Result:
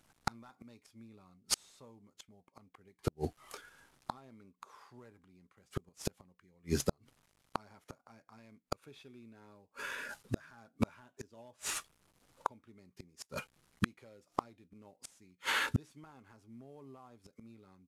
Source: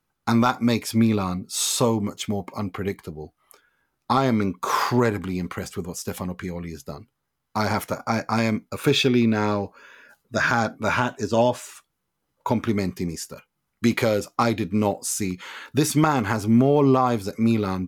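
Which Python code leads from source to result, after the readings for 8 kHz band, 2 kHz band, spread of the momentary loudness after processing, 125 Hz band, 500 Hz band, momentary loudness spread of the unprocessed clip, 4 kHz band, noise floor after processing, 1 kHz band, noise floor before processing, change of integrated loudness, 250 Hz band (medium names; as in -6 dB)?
-13.5 dB, -14.0 dB, 22 LU, -18.5 dB, -22.0 dB, 13 LU, -14.0 dB, -78 dBFS, -19.5 dB, -78 dBFS, -16.5 dB, -22.5 dB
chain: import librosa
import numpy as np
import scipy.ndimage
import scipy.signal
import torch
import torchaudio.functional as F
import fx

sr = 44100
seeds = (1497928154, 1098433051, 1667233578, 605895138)

y = fx.cvsd(x, sr, bps=64000)
y = fx.gate_flip(y, sr, shuts_db=-23.0, range_db=-42)
y = y * 10.0 ** (6.5 / 20.0)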